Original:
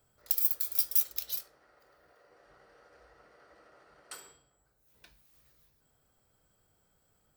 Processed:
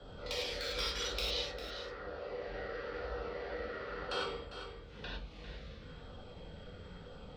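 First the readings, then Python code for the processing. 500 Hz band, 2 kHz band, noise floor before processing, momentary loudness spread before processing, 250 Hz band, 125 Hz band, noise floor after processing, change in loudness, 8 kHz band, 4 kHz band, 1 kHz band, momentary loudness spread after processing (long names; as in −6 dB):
+21.5 dB, +15.0 dB, −73 dBFS, 11 LU, +19.5 dB, +22.5 dB, −51 dBFS, −12.0 dB, −7.5 dB, +9.5 dB, +15.0 dB, 16 LU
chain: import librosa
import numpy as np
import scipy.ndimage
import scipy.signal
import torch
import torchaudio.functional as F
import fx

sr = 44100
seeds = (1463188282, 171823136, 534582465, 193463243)

p1 = scipy.signal.sosfilt(scipy.signal.butter(4, 3800.0, 'lowpass', fs=sr, output='sos'), x)
p2 = fx.low_shelf(p1, sr, hz=200.0, db=6.0)
p3 = fx.quant_dither(p2, sr, seeds[0], bits=6, dither='none')
p4 = p2 + (p3 * 10.0 ** (-9.0 / 20.0))
p5 = fx.filter_lfo_notch(p4, sr, shape='saw_down', hz=1.0, low_hz=560.0, high_hz=2400.0, q=2.4)
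p6 = fx.peak_eq(p5, sr, hz=490.0, db=6.5, octaves=0.22)
p7 = p6 + fx.echo_single(p6, sr, ms=400, db=-13.5, dry=0)
p8 = fx.rev_gated(p7, sr, seeds[1], gate_ms=130, shape='flat', drr_db=-7.5)
p9 = fx.band_squash(p8, sr, depth_pct=40)
y = p9 * 10.0 ** (8.0 / 20.0)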